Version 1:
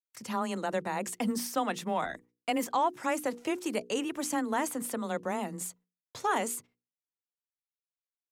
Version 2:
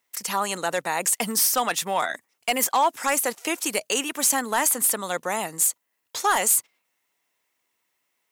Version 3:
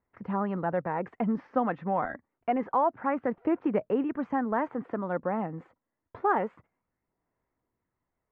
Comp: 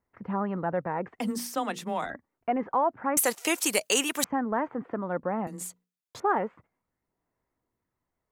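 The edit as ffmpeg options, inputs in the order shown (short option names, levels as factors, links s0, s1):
-filter_complex "[0:a]asplit=2[s0][s1];[2:a]asplit=4[s2][s3][s4][s5];[s2]atrim=end=1.192[s6];[s0]atrim=start=1.188:end=2.102[s7];[s3]atrim=start=2.098:end=3.172[s8];[1:a]atrim=start=3.168:end=4.242[s9];[s4]atrim=start=4.238:end=5.472[s10];[s1]atrim=start=5.468:end=6.202[s11];[s5]atrim=start=6.198[s12];[s6][s7]acrossfade=d=0.004:c1=hsin:c2=hsin[s13];[s13][s8]acrossfade=d=0.004:c1=hsin:c2=hsin[s14];[s14][s9]acrossfade=d=0.004:c1=hsin:c2=hsin[s15];[s15][s10]acrossfade=d=0.004:c1=hsin:c2=hsin[s16];[s16][s11]acrossfade=d=0.004:c1=hsin:c2=hsin[s17];[s17][s12]acrossfade=d=0.004:c1=hsin:c2=hsin"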